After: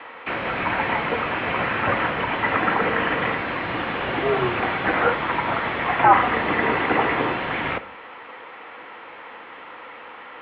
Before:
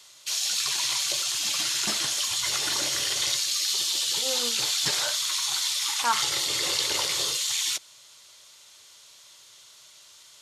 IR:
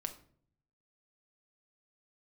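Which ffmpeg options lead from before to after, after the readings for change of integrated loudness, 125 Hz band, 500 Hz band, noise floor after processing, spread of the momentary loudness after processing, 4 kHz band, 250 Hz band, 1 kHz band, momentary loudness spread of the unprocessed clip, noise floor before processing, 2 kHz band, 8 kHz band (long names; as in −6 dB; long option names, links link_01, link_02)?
+2.0 dB, +16.5 dB, +15.5 dB, −41 dBFS, 19 LU, −11.0 dB, +18.0 dB, +14.5 dB, 1 LU, −52 dBFS, +11.5 dB, below −40 dB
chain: -filter_complex "[0:a]asplit=2[link_01][link_02];[link_02]highpass=frequency=720:poles=1,volume=27dB,asoftclip=type=tanh:threshold=-9.5dB[link_03];[link_01][link_03]amix=inputs=2:normalize=0,lowpass=frequency=1100:poles=1,volume=-6dB,asplit=2[link_04][link_05];[1:a]atrim=start_sample=2205,asetrate=48510,aresample=44100[link_06];[link_05][link_06]afir=irnorm=-1:irlink=0,volume=3.5dB[link_07];[link_04][link_07]amix=inputs=2:normalize=0,highpass=frequency=210:width_type=q:width=0.5412,highpass=frequency=210:width_type=q:width=1.307,lowpass=frequency=2400:width_type=q:width=0.5176,lowpass=frequency=2400:width_type=q:width=0.7071,lowpass=frequency=2400:width_type=q:width=1.932,afreqshift=-110,volume=2dB"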